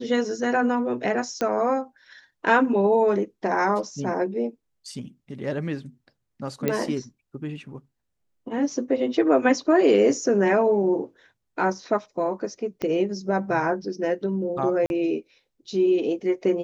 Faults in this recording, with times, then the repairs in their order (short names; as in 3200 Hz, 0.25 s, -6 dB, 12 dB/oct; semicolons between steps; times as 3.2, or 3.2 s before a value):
1.41 pop -13 dBFS
6.68 pop -10 dBFS
12.82 pop -17 dBFS
14.86–14.9 gap 41 ms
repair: de-click; interpolate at 14.86, 41 ms